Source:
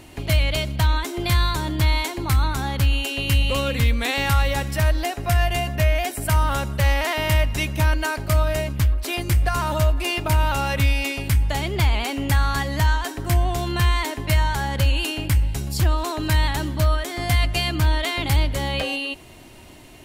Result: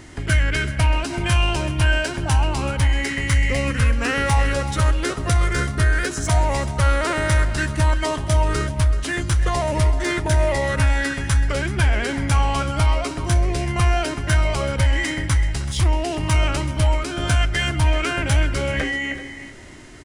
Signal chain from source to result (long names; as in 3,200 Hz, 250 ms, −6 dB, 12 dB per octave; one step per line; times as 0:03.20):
in parallel at −8 dB: soft clipping −24.5 dBFS, distortion −7 dB
on the sum: far-end echo of a speakerphone 310 ms, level −11 dB
formants moved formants −6 semitones
single-tap delay 381 ms −15 dB